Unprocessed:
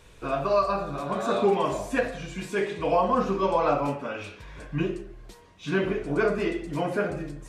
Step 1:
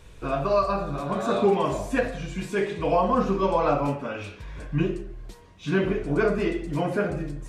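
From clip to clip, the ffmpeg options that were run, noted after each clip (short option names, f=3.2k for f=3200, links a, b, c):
-af "lowshelf=f=200:g=7"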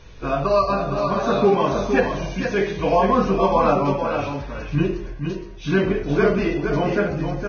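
-af "aecho=1:1:465:0.473,volume=4dB" -ar 16000 -c:a libvorbis -b:a 16k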